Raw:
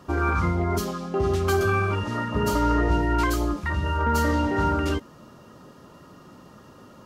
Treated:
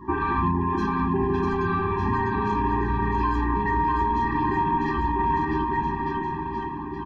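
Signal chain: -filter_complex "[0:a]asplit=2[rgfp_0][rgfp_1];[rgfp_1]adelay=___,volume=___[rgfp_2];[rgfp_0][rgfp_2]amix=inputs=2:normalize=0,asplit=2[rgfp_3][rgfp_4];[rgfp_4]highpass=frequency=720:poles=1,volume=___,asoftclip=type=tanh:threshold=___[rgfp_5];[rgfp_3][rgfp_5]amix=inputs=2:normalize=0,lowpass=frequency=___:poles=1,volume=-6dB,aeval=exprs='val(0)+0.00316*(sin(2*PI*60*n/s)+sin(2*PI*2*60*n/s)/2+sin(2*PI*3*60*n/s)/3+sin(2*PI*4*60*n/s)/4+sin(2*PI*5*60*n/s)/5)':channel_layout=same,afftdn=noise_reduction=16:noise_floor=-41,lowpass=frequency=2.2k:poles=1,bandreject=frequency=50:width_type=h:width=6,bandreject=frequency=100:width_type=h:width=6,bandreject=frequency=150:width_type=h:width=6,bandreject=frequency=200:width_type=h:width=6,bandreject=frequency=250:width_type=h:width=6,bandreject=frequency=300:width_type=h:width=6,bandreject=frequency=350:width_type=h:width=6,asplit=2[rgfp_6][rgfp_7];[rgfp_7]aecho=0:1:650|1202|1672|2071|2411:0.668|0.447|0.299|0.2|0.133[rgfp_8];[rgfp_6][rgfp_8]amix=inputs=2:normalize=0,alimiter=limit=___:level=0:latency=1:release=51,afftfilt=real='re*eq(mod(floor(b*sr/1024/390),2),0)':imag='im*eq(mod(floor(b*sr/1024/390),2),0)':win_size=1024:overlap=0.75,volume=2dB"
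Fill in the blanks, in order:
19, -5dB, 22dB, -10dB, 1.1k, -15.5dB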